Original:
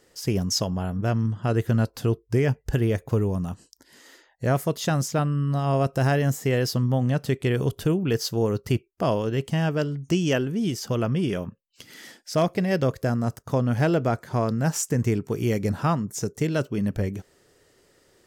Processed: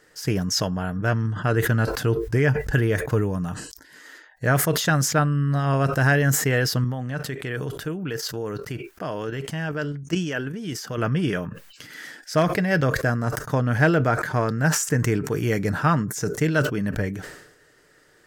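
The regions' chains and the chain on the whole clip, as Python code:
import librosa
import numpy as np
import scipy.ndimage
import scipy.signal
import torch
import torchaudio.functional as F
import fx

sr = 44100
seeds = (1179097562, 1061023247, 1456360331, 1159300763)

y = fx.chain(x, sr, fx.low_shelf(hz=73.0, db=-10.5),
    fx.level_steps(step_db=10), at=(6.84, 10.98))
y = fx.peak_eq(y, sr, hz=1600.0, db=11.0, octaves=0.7)
y = y + 0.31 * np.pad(y, (int(6.6 * sr / 1000.0), 0))[:len(y)]
y = fx.sustainer(y, sr, db_per_s=66.0)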